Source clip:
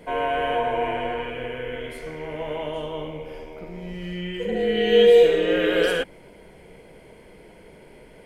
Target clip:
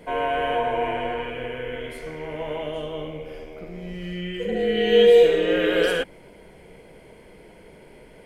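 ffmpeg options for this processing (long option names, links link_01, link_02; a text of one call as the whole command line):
ffmpeg -i in.wav -filter_complex "[0:a]asettb=1/sr,asplit=3[link_01][link_02][link_03];[link_01]atrim=end=2.594[link_04];[link_02]atrim=start=2.59:end=4.82,asetpts=PTS-STARTPTS,afade=type=in:duration=0.004:curve=qsin,afade=type=out:start_time=2.226:duration=0.004:curve=qsin,bandreject=frequency=920:width=6.7[link_05];[link_03]atrim=start=4.816[link_06];[link_04][link_05]acrossfade=duration=0.004:curve1=hsin:curve2=qsin[link_07];[link_07][link_06]acrossfade=duration=0.004:curve1=qsin:curve2=hsin" out.wav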